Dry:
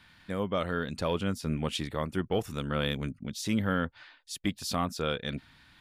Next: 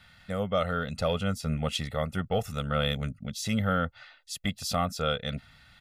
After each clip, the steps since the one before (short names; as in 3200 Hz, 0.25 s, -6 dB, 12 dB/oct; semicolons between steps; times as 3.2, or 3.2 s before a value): comb 1.5 ms, depth 82%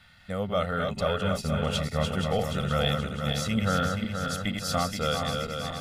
regenerating reverse delay 0.238 s, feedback 75%, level -4.5 dB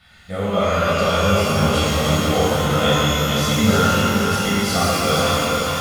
shimmer reverb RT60 2.1 s, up +12 st, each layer -8 dB, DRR -9 dB